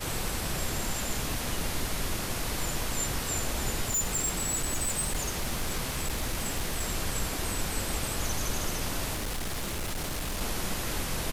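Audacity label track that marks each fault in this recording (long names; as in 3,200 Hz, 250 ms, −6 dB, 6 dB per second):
3.880000	6.850000	clipping −25 dBFS
9.130000	10.420000	clipping −29 dBFS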